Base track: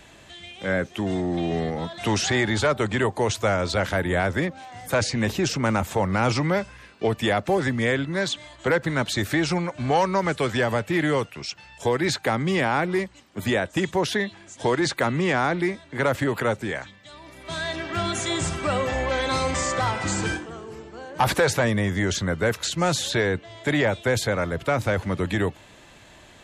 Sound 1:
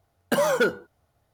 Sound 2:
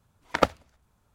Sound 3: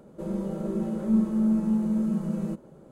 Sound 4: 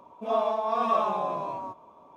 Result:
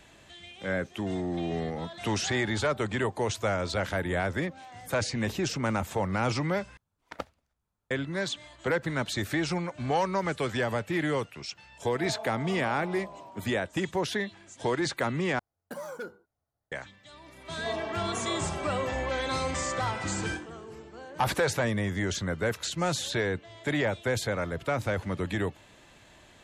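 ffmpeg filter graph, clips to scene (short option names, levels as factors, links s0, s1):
-filter_complex "[4:a]asplit=2[s0][s1];[0:a]volume=0.501[s2];[s0]bandreject=f=1100:w=5.9[s3];[1:a]equalizer=f=3000:w=2.2:g=-8[s4];[s1]equalizer=f=310:w=0.56:g=12[s5];[s2]asplit=3[s6][s7][s8];[s6]atrim=end=6.774[s9];[2:a]atrim=end=1.14,asetpts=PTS-STARTPTS,volume=0.158[s10];[s7]atrim=start=7.906:end=15.394[s11];[s4]atrim=end=1.33,asetpts=PTS-STARTPTS,volume=0.141[s12];[s8]atrim=start=16.716[s13];[s3]atrim=end=2.16,asetpts=PTS-STARTPTS,volume=0.251,afade=t=in:d=0.004:c=hsin,afade=t=out:st=2.156:d=0.004:c=hsin,adelay=11720[s14];[s5]atrim=end=2.16,asetpts=PTS-STARTPTS,volume=0.158,afade=t=in:d=0.004:c=hsin,afade=t=out:st=2.156:d=0.004:c=hsin,adelay=17360[s15];[s9][s10]acrossfade=d=0.004:c1=hsin:c2=hsin[s16];[s16][s11]acrossfade=d=0.004:c1=hsin:c2=hsin[s17];[s17][s12]acrossfade=d=0.004:c1=hsin:c2=hsin[s18];[s18][s13]acrossfade=d=0.004:c1=hsin:c2=hsin[s19];[s19][s14][s15]amix=inputs=3:normalize=0"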